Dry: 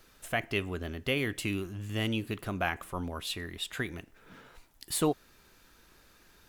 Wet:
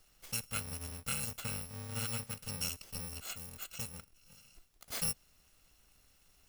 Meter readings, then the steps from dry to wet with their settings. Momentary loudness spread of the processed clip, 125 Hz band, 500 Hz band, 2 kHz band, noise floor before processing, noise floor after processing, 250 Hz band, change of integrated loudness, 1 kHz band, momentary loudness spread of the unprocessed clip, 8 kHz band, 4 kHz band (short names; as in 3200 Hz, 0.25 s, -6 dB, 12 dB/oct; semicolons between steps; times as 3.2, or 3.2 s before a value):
8 LU, -7.0 dB, -17.0 dB, -11.5 dB, -62 dBFS, -68 dBFS, -14.5 dB, -5.0 dB, -11.5 dB, 7 LU, +2.5 dB, -5.5 dB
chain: FFT order left unsorted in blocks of 128 samples; high shelf 10000 Hz -5.5 dB; gain -4.5 dB